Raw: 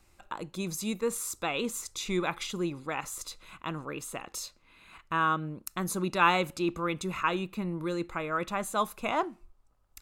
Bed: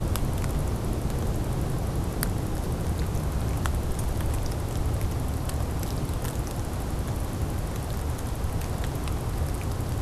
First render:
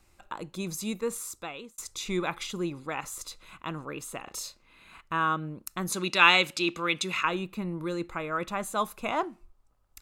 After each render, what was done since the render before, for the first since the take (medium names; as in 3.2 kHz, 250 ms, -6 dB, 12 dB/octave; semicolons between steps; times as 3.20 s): 0.77–1.78 s: fade out equal-power; 4.24–5.01 s: doubling 37 ms -5 dB; 5.92–7.25 s: frequency weighting D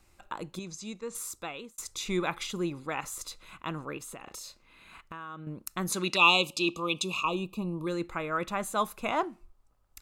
0.59–1.15 s: four-pole ladder low-pass 7.7 kHz, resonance 35%; 3.97–5.47 s: compression, threshold -39 dBFS; 6.16–7.87 s: elliptic band-stop 1.2–2.5 kHz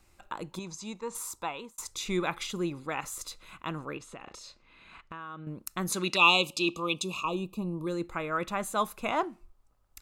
0.51–1.89 s: peaking EQ 930 Hz +13 dB 0.41 oct; 3.97–5.47 s: low-pass 5.5 kHz; 6.95–8.14 s: peaking EQ 2.2 kHz -5 dB 1.9 oct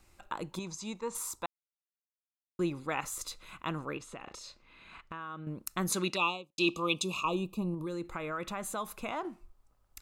1.46–2.59 s: mute; 5.92–6.58 s: studio fade out; 7.74–9.25 s: compression 3:1, threshold -34 dBFS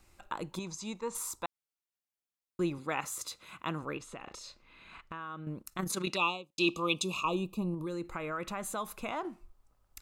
2.78–3.83 s: high-pass 96 Hz; 5.62–6.07 s: AM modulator 28 Hz, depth 45%; 7.90–8.59 s: band-stop 3.5 kHz, Q 14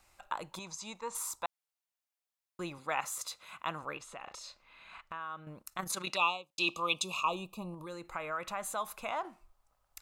resonant low shelf 490 Hz -8 dB, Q 1.5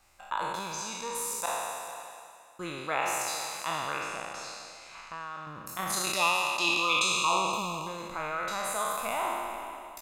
spectral sustain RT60 2.18 s; delay 453 ms -14.5 dB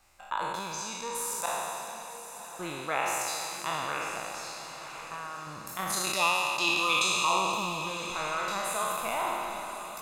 echo that smears into a reverb 1044 ms, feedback 40%, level -11 dB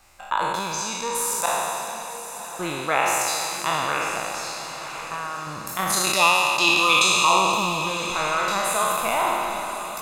trim +8.5 dB